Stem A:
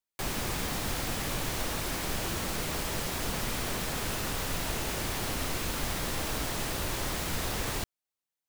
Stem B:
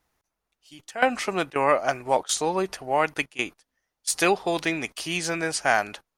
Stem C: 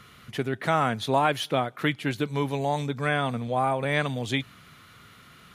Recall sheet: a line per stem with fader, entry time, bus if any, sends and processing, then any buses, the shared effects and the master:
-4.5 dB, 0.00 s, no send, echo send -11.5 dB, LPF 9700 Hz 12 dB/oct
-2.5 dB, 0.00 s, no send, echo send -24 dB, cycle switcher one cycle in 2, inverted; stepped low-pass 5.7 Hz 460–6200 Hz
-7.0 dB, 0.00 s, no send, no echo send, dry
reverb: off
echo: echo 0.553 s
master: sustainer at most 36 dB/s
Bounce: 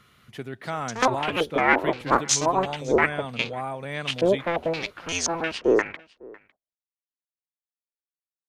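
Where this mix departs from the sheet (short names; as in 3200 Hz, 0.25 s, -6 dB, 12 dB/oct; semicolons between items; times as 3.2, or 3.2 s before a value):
stem A: muted; master: missing sustainer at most 36 dB/s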